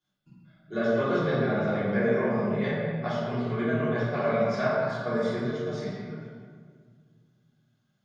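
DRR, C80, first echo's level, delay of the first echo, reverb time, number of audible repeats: −13.0 dB, 0.0 dB, no echo audible, no echo audible, 1.8 s, no echo audible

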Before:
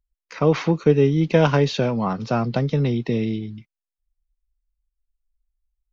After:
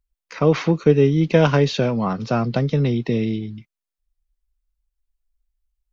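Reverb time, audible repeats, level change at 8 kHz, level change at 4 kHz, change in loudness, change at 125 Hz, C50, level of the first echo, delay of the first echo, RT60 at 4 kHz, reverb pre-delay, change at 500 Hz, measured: no reverb audible, no echo audible, can't be measured, +1.5 dB, +1.5 dB, +1.5 dB, no reverb audible, no echo audible, no echo audible, no reverb audible, no reverb audible, +1.5 dB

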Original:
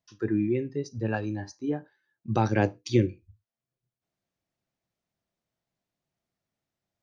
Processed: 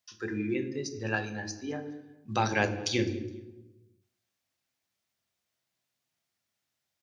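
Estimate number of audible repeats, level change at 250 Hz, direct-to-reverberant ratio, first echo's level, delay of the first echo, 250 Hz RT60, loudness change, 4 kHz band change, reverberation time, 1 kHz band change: 2, −5.0 dB, 8.0 dB, −23.0 dB, 208 ms, 1.4 s, −3.5 dB, +7.0 dB, 1.1 s, −0.5 dB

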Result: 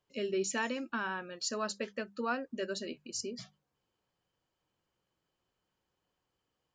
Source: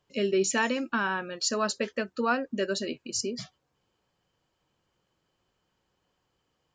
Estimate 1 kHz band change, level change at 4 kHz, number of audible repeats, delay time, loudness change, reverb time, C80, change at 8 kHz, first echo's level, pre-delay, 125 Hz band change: −7.5 dB, −7.5 dB, no echo audible, no echo audible, −7.5 dB, no reverb audible, no reverb audible, −7.5 dB, no echo audible, no reverb audible, −9.0 dB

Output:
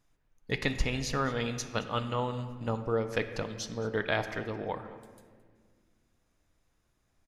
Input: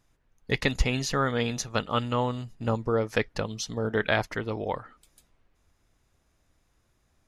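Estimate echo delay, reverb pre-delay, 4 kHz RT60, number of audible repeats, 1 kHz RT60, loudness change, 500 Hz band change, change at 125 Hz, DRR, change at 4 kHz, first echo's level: 218 ms, 3 ms, 1.2 s, 1, 1.6 s, −4.5 dB, −4.0 dB, −4.5 dB, 8.0 dB, −4.5 dB, −19.0 dB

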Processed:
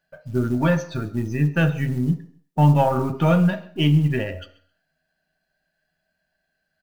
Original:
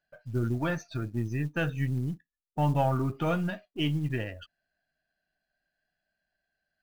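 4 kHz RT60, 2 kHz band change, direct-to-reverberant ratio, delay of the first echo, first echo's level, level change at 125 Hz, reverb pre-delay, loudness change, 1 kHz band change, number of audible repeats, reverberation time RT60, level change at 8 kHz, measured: 0.55 s, +7.0 dB, 7.0 dB, 132 ms, −22.5 dB, +10.0 dB, 3 ms, +9.5 dB, +8.0 dB, 1, 0.55 s, can't be measured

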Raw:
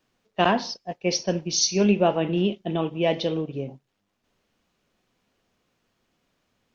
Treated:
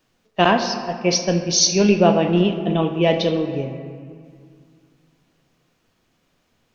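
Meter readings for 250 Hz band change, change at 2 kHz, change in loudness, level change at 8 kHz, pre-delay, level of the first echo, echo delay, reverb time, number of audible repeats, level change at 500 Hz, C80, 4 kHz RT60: +5.5 dB, +6.0 dB, +5.5 dB, can't be measured, 6 ms, no echo audible, no echo audible, 2.1 s, no echo audible, +5.5 dB, 9.0 dB, 1.5 s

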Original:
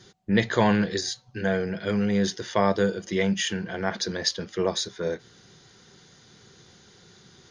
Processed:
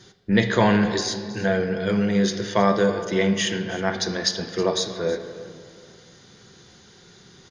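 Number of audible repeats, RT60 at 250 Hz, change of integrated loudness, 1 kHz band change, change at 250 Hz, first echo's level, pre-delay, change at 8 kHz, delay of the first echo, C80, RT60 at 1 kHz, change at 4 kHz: 1, 2.7 s, +3.5 dB, +3.5 dB, +3.5 dB, −17.0 dB, 3 ms, +3.0 dB, 319 ms, 9.5 dB, 1.9 s, +3.0 dB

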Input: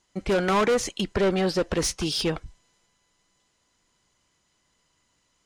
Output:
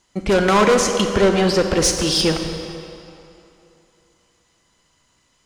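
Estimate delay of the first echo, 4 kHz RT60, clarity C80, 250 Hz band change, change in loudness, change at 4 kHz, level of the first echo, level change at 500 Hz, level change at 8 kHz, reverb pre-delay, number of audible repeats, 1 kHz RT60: no echo audible, 2.1 s, 6.5 dB, +8.0 dB, +8.0 dB, +9.0 dB, no echo audible, +7.5 dB, +10.0 dB, 28 ms, no echo audible, 3.0 s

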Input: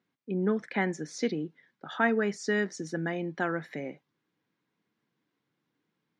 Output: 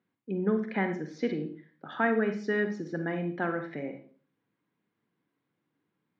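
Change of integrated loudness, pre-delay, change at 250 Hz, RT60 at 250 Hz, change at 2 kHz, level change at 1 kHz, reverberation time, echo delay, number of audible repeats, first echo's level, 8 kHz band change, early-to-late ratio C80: 0.0 dB, 38 ms, +0.5 dB, 0.50 s, −1.0 dB, −0.5 dB, 0.45 s, no echo audible, no echo audible, no echo audible, below −15 dB, 13.5 dB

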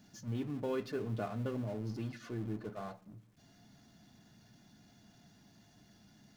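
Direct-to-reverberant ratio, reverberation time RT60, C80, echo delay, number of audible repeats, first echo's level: 11.0 dB, 0.70 s, 21.0 dB, no echo audible, no echo audible, no echo audible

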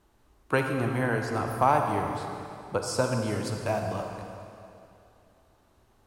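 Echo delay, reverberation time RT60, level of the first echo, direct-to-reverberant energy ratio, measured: no echo audible, 2.7 s, no echo audible, 3.0 dB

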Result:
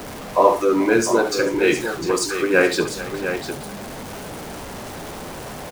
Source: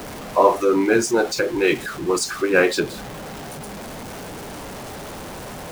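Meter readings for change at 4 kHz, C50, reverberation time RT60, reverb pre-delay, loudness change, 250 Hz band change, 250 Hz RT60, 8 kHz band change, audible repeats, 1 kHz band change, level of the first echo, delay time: +1.0 dB, no reverb audible, no reverb audible, no reverb audible, 0.0 dB, +1.0 dB, no reverb audible, +1.0 dB, 3, +1.0 dB, −11.0 dB, 70 ms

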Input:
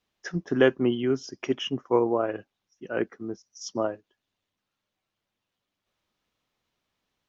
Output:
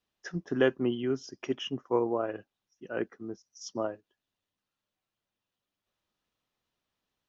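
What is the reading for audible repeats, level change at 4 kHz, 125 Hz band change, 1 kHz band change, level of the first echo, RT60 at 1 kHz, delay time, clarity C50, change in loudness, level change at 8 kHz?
no echo audible, −5.0 dB, −5.0 dB, −5.0 dB, no echo audible, no reverb audible, no echo audible, no reverb audible, −5.0 dB, can't be measured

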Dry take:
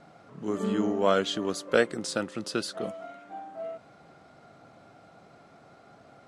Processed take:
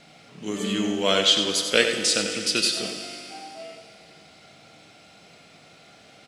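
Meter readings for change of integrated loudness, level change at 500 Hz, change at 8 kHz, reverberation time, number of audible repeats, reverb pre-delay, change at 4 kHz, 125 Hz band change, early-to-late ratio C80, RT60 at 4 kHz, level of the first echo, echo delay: +7.5 dB, +1.0 dB, +14.0 dB, 2.7 s, 1, 4 ms, +15.5 dB, +1.5 dB, 5.0 dB, 2.7 s, −8.5 dB, 92 ms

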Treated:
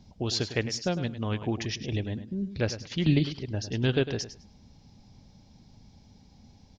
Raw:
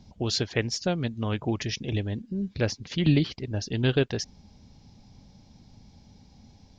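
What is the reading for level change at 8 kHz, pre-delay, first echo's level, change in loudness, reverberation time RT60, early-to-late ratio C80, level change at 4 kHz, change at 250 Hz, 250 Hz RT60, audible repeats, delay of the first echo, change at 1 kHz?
can't be measured, no reverb audible, −12.0 dB, −1.5 dB, no reverb audible, no reverb audible, −1.5 dB, −1.5 dB, no reverb audible, 2, 103 ms, −1.5 dB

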